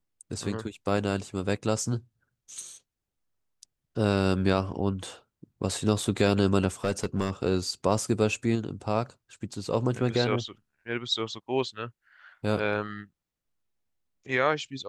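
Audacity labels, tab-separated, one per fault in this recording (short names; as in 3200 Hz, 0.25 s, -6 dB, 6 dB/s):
6.840000	7.310000	clipped -20 dBFS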